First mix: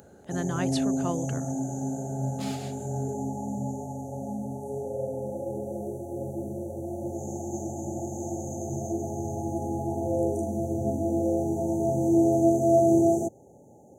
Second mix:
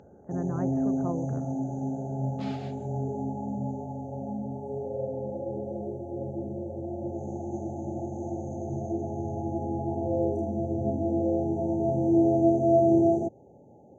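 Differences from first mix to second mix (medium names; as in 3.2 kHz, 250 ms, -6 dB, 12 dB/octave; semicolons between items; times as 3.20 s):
speech: add Gaussian low-pass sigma 7 samples; master: add distance through air 230 m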